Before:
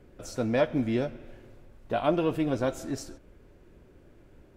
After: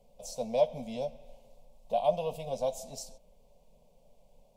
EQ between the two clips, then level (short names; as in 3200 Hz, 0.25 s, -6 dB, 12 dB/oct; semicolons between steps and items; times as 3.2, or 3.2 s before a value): bell 63 Hz -11 dB 2.3 oct; fixed phaser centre 360 Hz, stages 6; fixed phaser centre 730 Hz, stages 4; +1.5 dB